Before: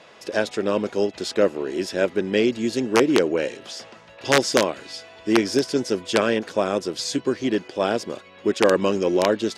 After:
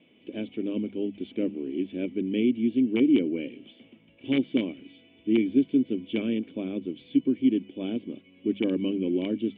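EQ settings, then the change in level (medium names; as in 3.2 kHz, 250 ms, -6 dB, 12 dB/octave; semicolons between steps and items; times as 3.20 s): cascade formant filter i; hum notches 50/100/150/200 Hz; +4.5 dB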